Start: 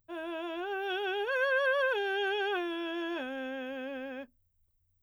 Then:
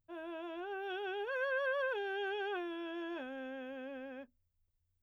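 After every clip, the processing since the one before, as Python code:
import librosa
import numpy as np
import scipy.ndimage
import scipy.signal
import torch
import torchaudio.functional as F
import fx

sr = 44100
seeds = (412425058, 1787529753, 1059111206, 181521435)

y = fx.high_shelf(x, sr, hz=3000.0, db=-7.5)
y = y * 10.0 ** (-6.0 / 20.0)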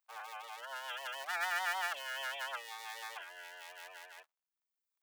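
y = fx.cycle_switch(x, sr, every=3, mode='inverted')
y = fx.dereverb_blind(y, sr, rt60_s=1.0)
y = scipy.signal.sosfilt(scipy.signal.butter(4, 820.0, 'highpass', fs=sr, output='sos'), y)
y = y * 10.0 ** (4.0 / 20.0)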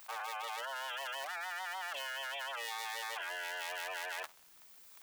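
y = fx.env_flatten(x, sr, amount_pct=100)
y = y * 10.0 ** (-8.0 / 20.0)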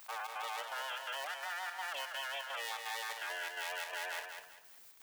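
y = fx.hum_notches(x, sr, base_hz=60, count=2)
y = fx.chopper(y, sr, hz=2.8, depth_pct=65, duty_pct=75)
y = fx.echo_feedback(y, sr, ms=196, feedback_pct=29, wet_db=-6.5)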